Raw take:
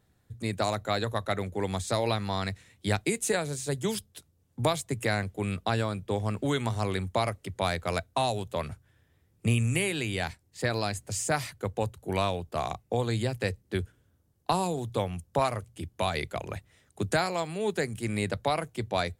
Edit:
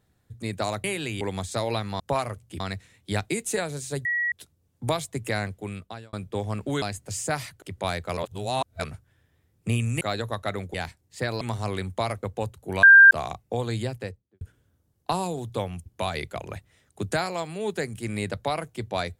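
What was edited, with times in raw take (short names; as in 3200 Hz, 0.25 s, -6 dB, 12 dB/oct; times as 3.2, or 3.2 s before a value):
0.84–1.57 swap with 9.79–10.16
3.81–4.08 bleep 1920 Hz -22.5 dBFS
5.21–5.89 fade out
6.58–7.4 swap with 10.83–11.63
7.95–8.62 reverse
12.23–12.51 bleep 1590 Hz -7.5 dBFS
13.19–13.81 studio fade out
15.26–15.86 move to 2.36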